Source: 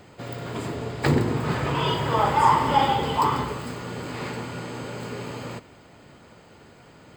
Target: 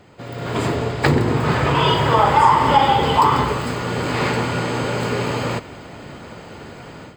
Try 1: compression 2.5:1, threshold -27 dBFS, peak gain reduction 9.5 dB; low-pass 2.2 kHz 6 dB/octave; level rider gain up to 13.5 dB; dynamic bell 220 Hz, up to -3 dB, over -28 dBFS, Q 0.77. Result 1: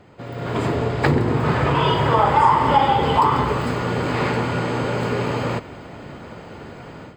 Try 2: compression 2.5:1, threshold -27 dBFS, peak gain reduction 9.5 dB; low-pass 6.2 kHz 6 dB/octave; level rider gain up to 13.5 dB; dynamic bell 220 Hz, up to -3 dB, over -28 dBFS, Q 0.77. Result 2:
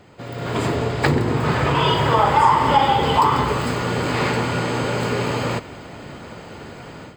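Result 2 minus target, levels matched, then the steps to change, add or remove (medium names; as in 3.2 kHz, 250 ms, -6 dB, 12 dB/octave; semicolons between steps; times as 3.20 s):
compression: peak gain reduction +4 dB
change: compression 2.5:1, threshold -20.5 dBFS, peak gain reduction 5.5 dB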